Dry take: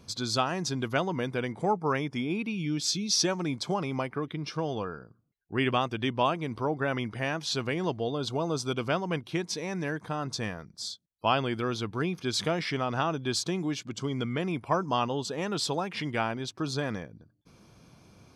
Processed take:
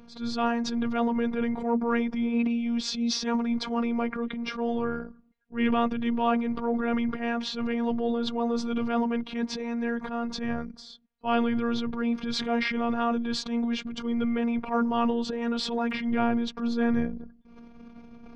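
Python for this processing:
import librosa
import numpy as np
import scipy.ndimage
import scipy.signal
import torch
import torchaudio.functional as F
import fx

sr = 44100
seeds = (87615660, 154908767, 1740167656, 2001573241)

y = scipy.signal.sosfilt(scipy.signal.butter(2, 2400.0, 'lowpass', fs=sr, output='sos'), x)
y = fx.peak_eq(y, sr, hz=94.0, db=fx.steps((0.0, 6.0), (15.91, 12.5)), octaves=2.7)
y = fx.transient(y, sr, attack_db=-9, sustain_db=9)
y = fx.robotise(y, sr, hz=234.0)
y = y * 10.0 ** (4.0 / 20.0)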